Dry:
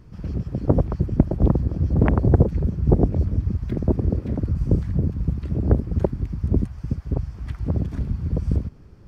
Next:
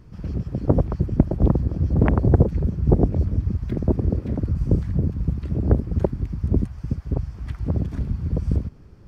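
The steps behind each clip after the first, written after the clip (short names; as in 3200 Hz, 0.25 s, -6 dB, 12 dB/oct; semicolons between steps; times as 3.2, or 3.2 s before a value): nothing audible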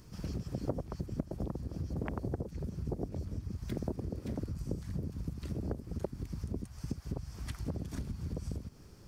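tone controls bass +2 dB, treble +15 dB; compressor 12:1, threshold -24 dBFS, peak gain reduction 17.5 dB; low shelf 200 Hz -9 dB; gain -3 dB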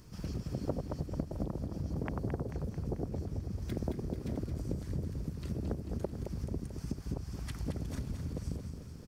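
feedback echo 0.22 s, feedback 59%, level -7.5 dB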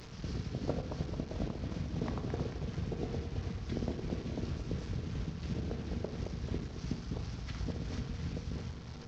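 delta modulation 32 kbps, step -42.5 dBFS; tremolo 2.9 Hz, depth 30%; reverb RT60 0.85 s, pre-delay 3 ms, DRR 7.5 dB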